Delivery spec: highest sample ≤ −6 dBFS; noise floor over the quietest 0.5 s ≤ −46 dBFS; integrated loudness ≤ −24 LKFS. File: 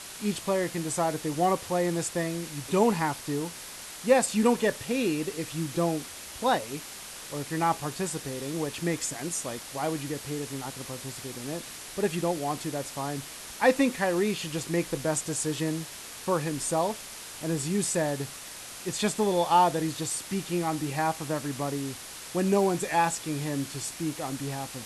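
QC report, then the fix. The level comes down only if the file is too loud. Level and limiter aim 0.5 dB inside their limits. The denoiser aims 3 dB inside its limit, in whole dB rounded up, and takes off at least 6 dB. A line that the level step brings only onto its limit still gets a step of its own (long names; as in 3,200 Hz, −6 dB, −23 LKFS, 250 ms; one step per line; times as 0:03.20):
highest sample −9.0 dBFS: in spec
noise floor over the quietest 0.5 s −42 dBFS: out of spec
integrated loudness −29.0 LKFS: in spec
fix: broadband denoise 7 dB, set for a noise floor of −42 dBFS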